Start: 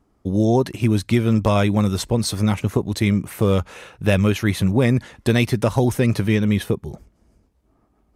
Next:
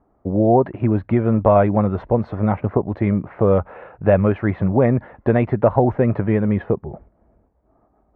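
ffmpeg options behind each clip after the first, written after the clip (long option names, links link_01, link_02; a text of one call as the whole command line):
ffmpeg -i in.wav -af "lowpass=frequency=1800:width=0.5412,lowpass=frequency=1800:width=1.3066,equalizer=frequency=670:width_type=o:width=1.1:gain=9.5,volume=-1dB" out.wav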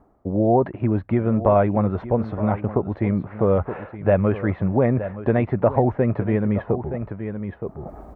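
ffmpeg -i in.wav -af "aecho=1:1:920:0.188,areverse,acompressor=mode=upward:threshold=-17dB:ratio=2.5,areverse,volume=-3dB" out.wav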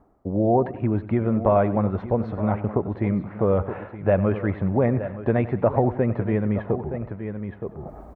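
ffmpeg -i in.wav -af "aecho=1:1:94|188|282|376:0.158|0.0761|0.0365|0.0175,volume=-2dB" out.wav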